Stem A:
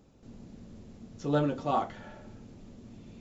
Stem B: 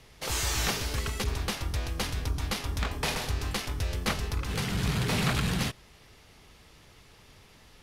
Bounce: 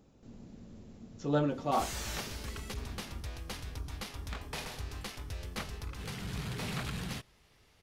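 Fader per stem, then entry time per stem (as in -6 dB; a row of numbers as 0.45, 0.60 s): -2.0, -10.0 dB; 0.00, 1.50 s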